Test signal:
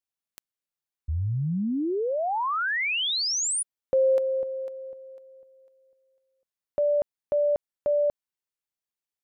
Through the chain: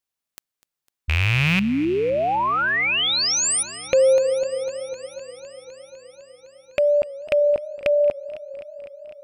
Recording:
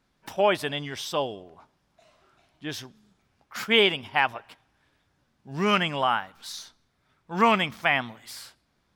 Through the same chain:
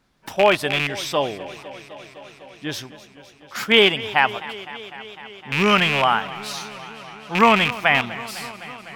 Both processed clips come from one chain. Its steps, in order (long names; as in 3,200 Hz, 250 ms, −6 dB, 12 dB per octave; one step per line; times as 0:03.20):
loose part that buzzes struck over −35 dBFS, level −15 dBFS
feedback echo with a swinging delay time 253 ms, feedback 79%, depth 102 cents, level −17.5 dB
level +5.5 dB